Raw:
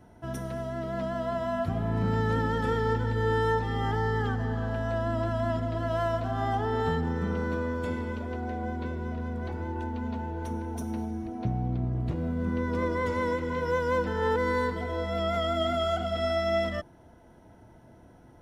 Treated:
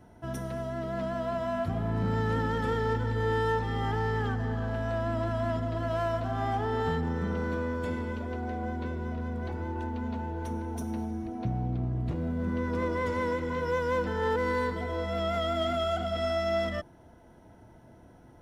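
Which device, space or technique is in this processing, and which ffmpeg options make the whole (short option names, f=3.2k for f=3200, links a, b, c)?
parallel distortion: -filter_complex "[0:a]asplit=2[a][b];[b]asoftclip=type=hard:threshold=-29.5dB,volume=-7dB[c];[a][c]amix=inputs=2:normalize=0,volume=-3.5dB"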